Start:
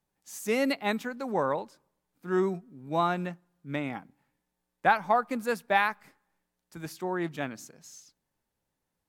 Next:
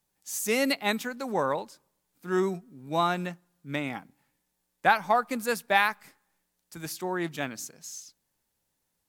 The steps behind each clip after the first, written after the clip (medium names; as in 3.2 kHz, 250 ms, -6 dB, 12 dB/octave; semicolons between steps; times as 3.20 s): treble shelf 3 kHz +10 dB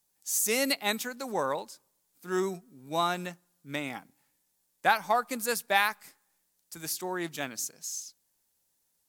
tone controls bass -4 dB, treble +8 dB; trim -2.5 dB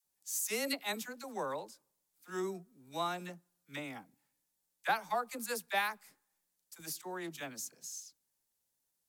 phase dispersion lows, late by 45 ms, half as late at 680 Hz; trim -8 dB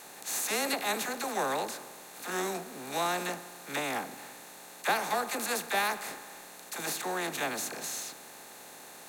spectral levelling over time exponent 0.4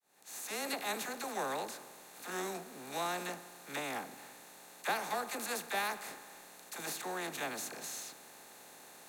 fade-in on the opening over 0.76 s; trim -6 dB